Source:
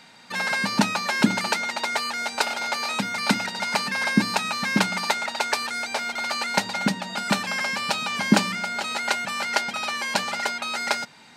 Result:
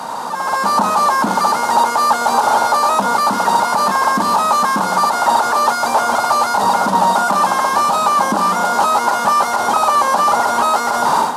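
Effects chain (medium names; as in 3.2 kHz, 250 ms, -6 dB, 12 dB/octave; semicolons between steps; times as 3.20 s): one-bit delta coder 64 kbps, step -12.5 dBFS; high-pass 500 Hz 6 dB/octave; peak limiter -16 dBFS, peak gain reduction 10.5 dB; level rider gain up to 12.5 dB; resonant high shelf 1.5 kHz -13 dB, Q 3; trim -1.5 dB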